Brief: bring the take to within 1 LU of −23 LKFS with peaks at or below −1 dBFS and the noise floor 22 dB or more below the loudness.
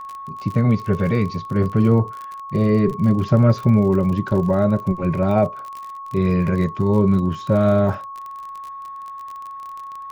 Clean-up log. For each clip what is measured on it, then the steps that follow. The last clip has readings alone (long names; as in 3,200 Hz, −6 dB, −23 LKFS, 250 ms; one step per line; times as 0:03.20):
crackle rate 40 per second; interfering tone 1,100 Hz; level of the tone −31 dBFS; integrated loudness −19.0 LKFS; sample peak −3.5 dBFS; target loudness −23.0 LKFS
→ click removal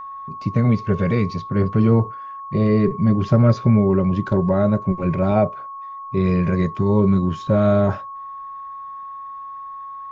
crackle rate 0 per second; interfering tone 1,100 Hz; level of the tone −31 dBFS
→ notch filter 1,100 Hz, Q 30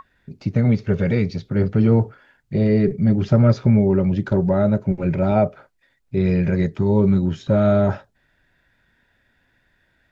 interfering tone none found; integrated loudness −19.0 LKFS; sample peak −4.0 dBFS; target loudness −23.0 LKFS
→ level −4 dB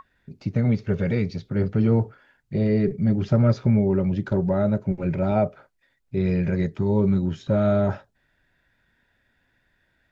integrated loudness −23.0 LKFS; sample peak −8.0 dBFS; background noise floor −69 dBFS